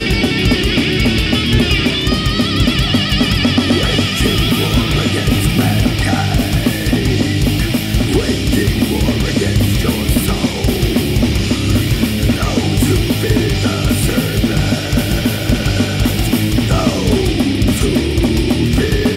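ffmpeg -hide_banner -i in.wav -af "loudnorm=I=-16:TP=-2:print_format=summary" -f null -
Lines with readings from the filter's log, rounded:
Input Integrated:    -14.5 LUFS
Input True Peak:      -3.9 dBTP
Input LRA:             1.4 LU
Input Threshold:     -24.5 LUFS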